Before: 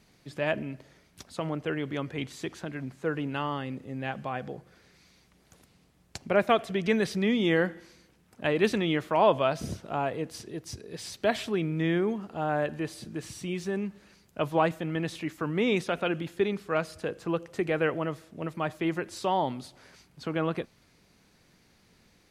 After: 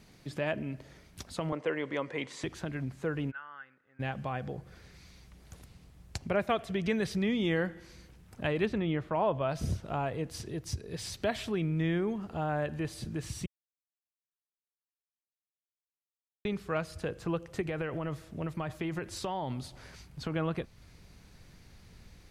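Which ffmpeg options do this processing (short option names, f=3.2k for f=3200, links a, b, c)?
-filter_complex "[0:a]asettb=1/sr,asplit=3[a][b][c];[a]atrim=end=1.524[d];[b]atrim=start=1.52:end=2.44,asetpts=PTS-STARTPTS,afade=t=in:d=0.004:c=qsin,afade=t=out:st=0.916:d=0.004:c=qsin,highpass=240,equalizer=f=520:t=q:w=4:g=9,equalizer=f=1k:t=q:w=4:g=9,equalizer=f=2k:t=q:w=4:g=7,lowpass=f=9.5k:w=0.5412,lowpass=f=9.5k:w=1.3066[e];[c]atrim=start=2.436[f];[d][e]acrossfade=d=0.004:c1=hsin:c2=qsin[g];[g][f]acrossfade=d=0.004:c1=qsin:c2=hsin,asplit=3[h][i][j];[h]afade=t=out:st=3.3:d=0.02[k];[i]bandpass=f=1.5k:t=q:w=10,afade=t=in:st=3.3:d=0.02,afade=t=out:st=3.99:d=0.02[l];[j]afade=t=in:st=3.99:d=0.02[m];[k][l][m]amix=inputs=3:normalize=0,asplit=3[n][o][p];[n]afade=t=out:st=8.64:d=0.02[q];[o]lowpass=f=1.5k:p=1,afade=t=in:st=8.64:d=0.02,afade=t=out:st=9.48:d=0.02[r];[p]afade=t=in:st=9.48:d=0.02[s];[q][r][s]amix=inputs=3:normalize=0,asettb=1/sr,asplit=3[t][u][v];[t]atrim=end=17.614[w];[u]atrim=start=17.61:end=20.32,asetpts=PTS-STARTPTS,afade=t=in:d=0.004:c=qsin,afade=t=out:st=2.706:d=0.004:c=qsin,acompressor=threshold=-28dB:ratio=4:attack=3.2:release=140:knee=1:detection=peak[x];[v]atrim=start=20.316[y];[w][x]acrossfade=d=0.004:c1=hsin:c2=qsin[z];[z][y]acrossfade=d=0.004:c1=qsin:c2=hsin,asplit=3[aa][ab][ac];[aa]atrim=end=13.46,asetpts=PTS-STARTPTS,afade=t=out:st=13.456:d=0.004:c=hsin[ad];[ab]atrim=start=13.46:end=16.45,asetpts=PTS-STARTPTS,volume=0[ae];[ac]atrim=start=16.45,asetpts=PTS-STARTPTS,afade=t=in:d=0.004:c=hsin[af];[ad][ae][af]concat=n=3:v=0:a=1,asubboost=boost=3:cutoff=120,acompressor=threshold=-44dB:ratio=1.5,lowshelf=f=260:g=4,volume=2.5dB"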